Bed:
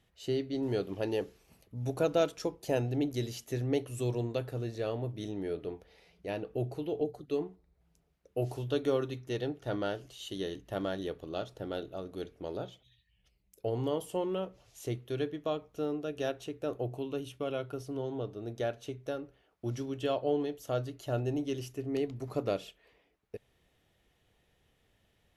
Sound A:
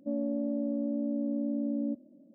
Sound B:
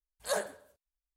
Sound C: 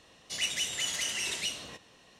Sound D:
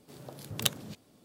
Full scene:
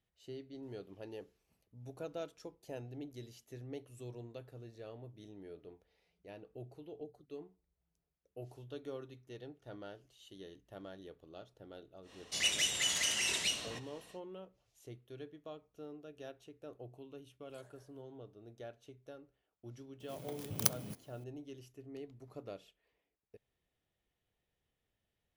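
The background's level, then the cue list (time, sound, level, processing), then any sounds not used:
bed -15 dB
12.02 s: add C -0.5 dB, fades 0.10 s
17.29 s: add B -16 dB + compression 12:1, threshold -44 dBFS
20.00 s: add D -2 dB + bit-reversed sample order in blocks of 16 samples
not used: A

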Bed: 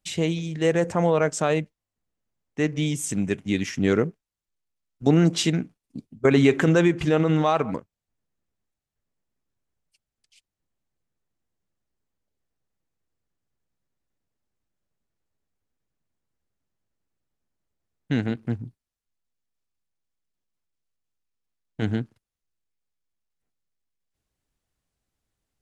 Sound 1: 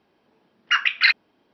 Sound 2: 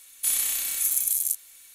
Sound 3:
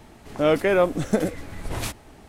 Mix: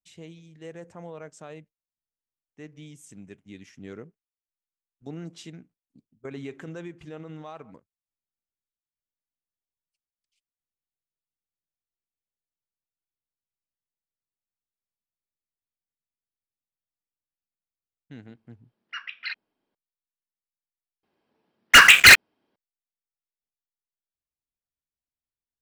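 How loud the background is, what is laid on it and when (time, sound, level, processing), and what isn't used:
bed -20 dB
18.22 s: add 1 -17 dB
21.03 s: replace with 1 -1 dB + waveshaping leveller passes 5
not used: 2, 3

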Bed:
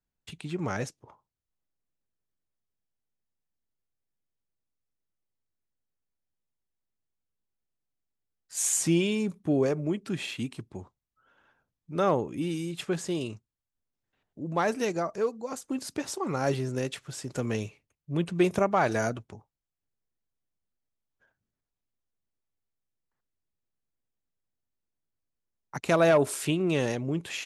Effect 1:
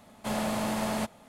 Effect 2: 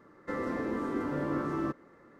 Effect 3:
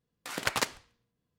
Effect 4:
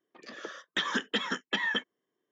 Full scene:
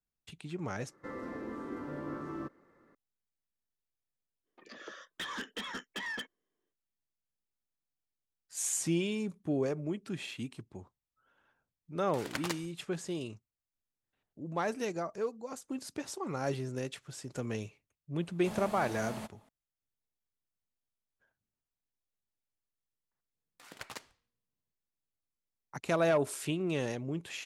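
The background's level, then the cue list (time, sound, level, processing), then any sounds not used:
bed -6.5 dB
0.76 s: add 2 -8 dB
4.43 s: add 4 -4.5 dB, fades 0.05 s + saturation -30 dBFS
11.88 s: add 3 -8.5 dB
18.21 s: add 1 -12 dB
23.34 s: add 3 -16 dB

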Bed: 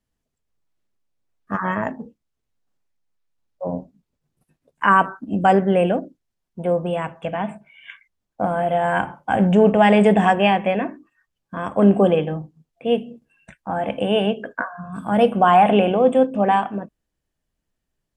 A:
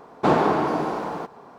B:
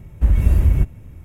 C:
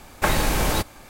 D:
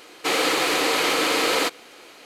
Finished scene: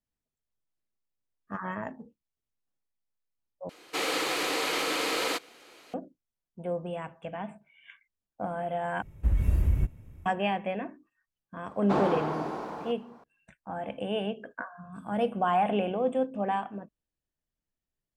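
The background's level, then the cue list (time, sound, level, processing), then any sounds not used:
bed -12 dB
3.69 s: replace with D -8 dB
9.02 s: replace with B -10 dB
11.66 s: add A -9 dB
not used: C

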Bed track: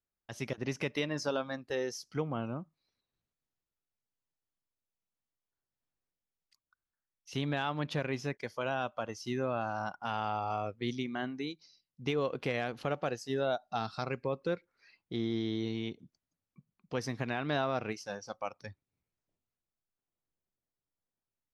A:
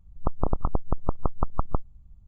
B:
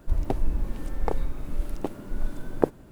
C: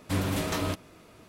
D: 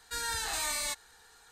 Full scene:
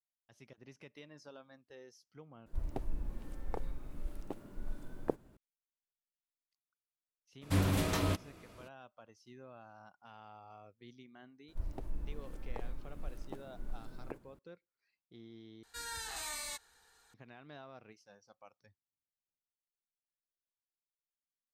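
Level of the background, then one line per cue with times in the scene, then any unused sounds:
bed track -20 dB
2.46 s: replace with B -12.5 dB
7.41 s: add C -4 dB, fades 0.02 s + bass shelf 98 Hz +7.5 dB
11.48 s: add B -14 dB + peak limiter -13.5 dBFS
15.63 s: replace with D -8.5 dB
not used: A

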